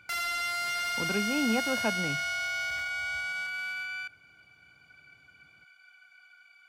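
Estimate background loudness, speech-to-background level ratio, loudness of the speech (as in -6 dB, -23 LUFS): -31.0 LUFS, -2.0 dB, -33.0 LUFS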